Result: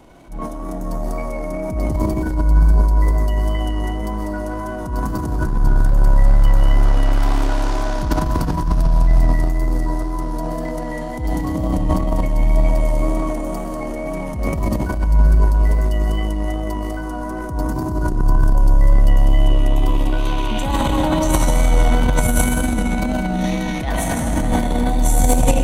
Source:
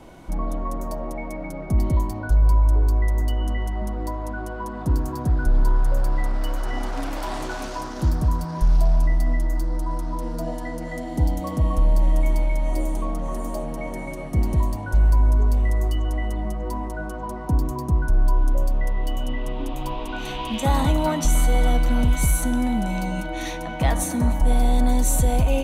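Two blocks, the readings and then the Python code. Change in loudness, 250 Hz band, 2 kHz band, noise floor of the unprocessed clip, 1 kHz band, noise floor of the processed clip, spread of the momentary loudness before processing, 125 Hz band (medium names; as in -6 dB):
+4.5 dB, +5.5 dB, +4.5 dB, -32 dBFS, +4.5 dB, -26 dBFS, 10 LU, +4.0 dB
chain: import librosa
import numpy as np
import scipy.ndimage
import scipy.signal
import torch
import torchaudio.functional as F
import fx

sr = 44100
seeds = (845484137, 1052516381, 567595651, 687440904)

y = fx.rev_freeverb(x, sr, rt60_s=4.0, hf_ratio=0.75, predelay_ms=90, drr_db=-3.0)
y = fx.transient(y, sr, attack_db=-10, sustain_db=11)
y = fx.wow_flutter(y, sr, seeds[0], rate_hz=2.1, depth_cents=21.0)
y = y * 10.0 ** (-1.5 / 20.0)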